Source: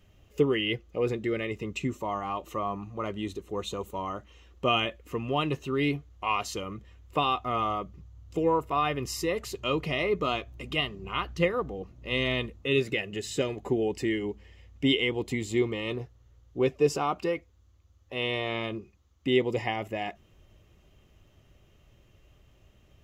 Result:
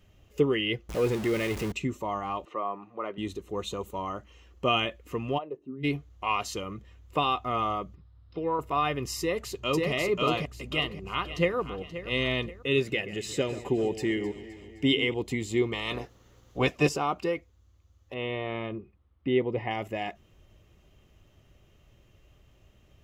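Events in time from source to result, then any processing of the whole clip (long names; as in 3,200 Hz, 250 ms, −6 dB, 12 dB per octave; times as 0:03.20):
0:00.89–0:01.72: converter with a step at zero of −31.5 dBFS
0:02.45–0:03.18: band-pass filter 340–2,400 Hz
0:04.09–0:04.66: notch filter 3,700 Hz
0:05.37–0:05.83: resonant band-pass 800 Hz → 150 Hz, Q 4.5
0:07.95–0:08.59: Chebyshev low-pass with heavy ripple 5,300 Hz, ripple 6 dB
0:09.19–0:09.91: delay throw 540 ms, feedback 30%, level −1 dB
0:10.65–0:11.56: delay throw 530 ms, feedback 40%, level −13 dB
0:12.82–0:15.14: delay that swaps between a low-pass and a high-pass 130 ms, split 2,400 Hz, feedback 75%, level −13 dB
0:15.72–0:16.88: ceiling on every frequency bin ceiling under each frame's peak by 18 dB
0:18.14–0:19.71: high-frequency loss of the air 410 metres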